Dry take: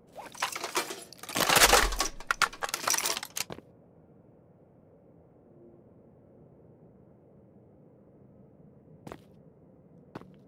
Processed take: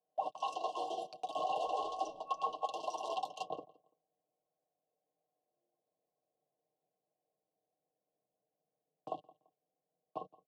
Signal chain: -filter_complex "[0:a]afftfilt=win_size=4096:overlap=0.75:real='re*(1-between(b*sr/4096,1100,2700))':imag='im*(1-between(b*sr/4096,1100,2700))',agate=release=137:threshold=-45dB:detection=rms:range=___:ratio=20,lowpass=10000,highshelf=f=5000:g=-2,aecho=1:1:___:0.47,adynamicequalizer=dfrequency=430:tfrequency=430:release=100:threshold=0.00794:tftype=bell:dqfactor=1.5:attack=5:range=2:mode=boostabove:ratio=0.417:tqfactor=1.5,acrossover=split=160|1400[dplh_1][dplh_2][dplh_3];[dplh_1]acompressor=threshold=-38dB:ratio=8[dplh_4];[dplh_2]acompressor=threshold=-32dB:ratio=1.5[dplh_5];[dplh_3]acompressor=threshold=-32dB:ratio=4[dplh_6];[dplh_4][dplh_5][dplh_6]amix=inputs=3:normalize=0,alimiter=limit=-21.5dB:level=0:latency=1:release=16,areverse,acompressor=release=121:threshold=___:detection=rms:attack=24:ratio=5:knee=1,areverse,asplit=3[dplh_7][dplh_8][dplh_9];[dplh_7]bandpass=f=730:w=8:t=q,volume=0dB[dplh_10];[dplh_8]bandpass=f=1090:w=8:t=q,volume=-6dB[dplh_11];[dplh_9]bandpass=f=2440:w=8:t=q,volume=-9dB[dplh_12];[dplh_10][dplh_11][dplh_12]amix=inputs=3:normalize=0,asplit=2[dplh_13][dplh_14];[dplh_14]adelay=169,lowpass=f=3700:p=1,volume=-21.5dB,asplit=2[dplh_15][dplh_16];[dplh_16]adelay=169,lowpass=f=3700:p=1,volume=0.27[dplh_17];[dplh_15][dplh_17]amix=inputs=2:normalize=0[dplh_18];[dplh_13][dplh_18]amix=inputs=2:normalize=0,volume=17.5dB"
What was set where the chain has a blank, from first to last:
-35dB, 6.5, -44dB